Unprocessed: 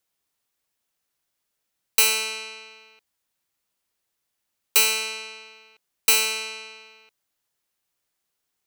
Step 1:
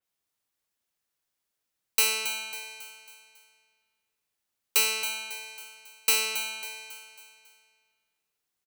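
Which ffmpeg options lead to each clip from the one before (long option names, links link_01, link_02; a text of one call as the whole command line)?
ffmpeg -i in.wav -filter_complex "[0:a]asplit=2[link_01][link_02];[link_02]aecho=0:1:274|548|822|1096|1370:0.355|0.163|0.0751|0.0345|0.0159[link_03];[link_01][link_03]amix=inputs=2:normalize=0,adynamicequalizer=threshold=0.0178:dfrequency=4100:dqfactor=0.7:tfrequency=4100:tqfactor=0.7:attack=5:release=100:ratio=0.375:range=2:mode=cutabove:tftype=highshelf,volume=-5dB" out.wav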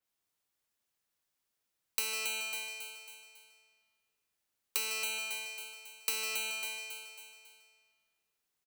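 ffmpeg -i in.wav -filter_complex "[0:a]asplit=2[link_01][link_02];[link_02]adelay=151.6,volume=-9dB,highshelf=frequency=4000:gain=-3.41[link_03];[link_01][link_03]amix=inputs=2:normalize=0,acrossover=split=130[link_04][link_05];[link_05]acompressor=threshold=-30dB:ratio=6[link_06];[link_04][link_06]amix=inputs=2:normalize=0,volume=-1.5dB" out.wav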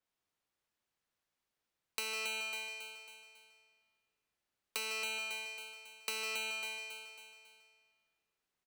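ffmpeg -i in.wav -af "lowpass=frequency=3200:poles=1,volume=1dB" out.wav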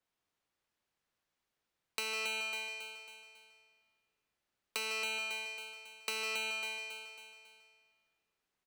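ffmpeg -i in.wav -af "highshelf=frequency=7100:gain=-6,volume=2.5dB" out.wav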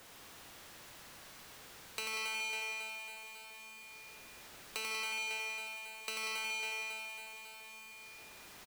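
ffmpeg -i in.wav -af "aeval=exprs='val(0)+0.5*0.00562*sgn(val(0))':channel_layout=same,aecho=1:1:90|189|297.9|417.7|549.5:0.631|0.398|0.251|0.158|0.1,volume=-4dB" out.wav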